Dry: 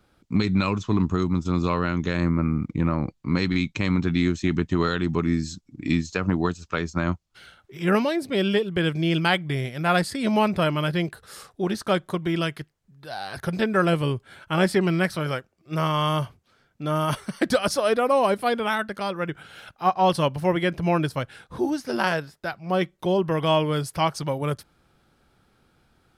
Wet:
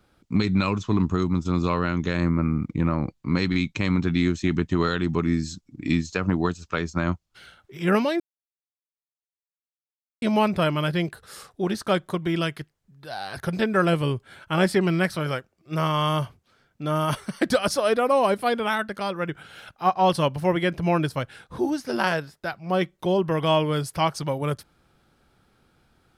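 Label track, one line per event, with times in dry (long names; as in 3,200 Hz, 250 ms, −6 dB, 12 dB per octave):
8.200000	10.220000	silence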